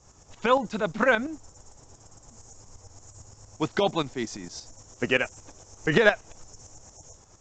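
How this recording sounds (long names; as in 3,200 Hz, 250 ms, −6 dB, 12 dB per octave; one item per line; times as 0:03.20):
tremolo saw up 8.7 Hz, depth 65%
mu-law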